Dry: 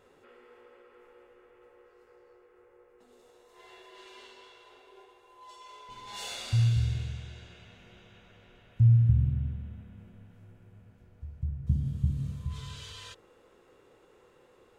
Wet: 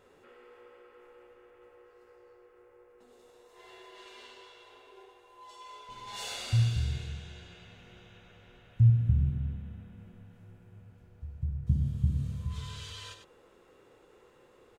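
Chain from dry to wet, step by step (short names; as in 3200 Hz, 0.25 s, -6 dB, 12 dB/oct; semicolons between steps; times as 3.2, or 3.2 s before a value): echo 99 ms -8.5 dB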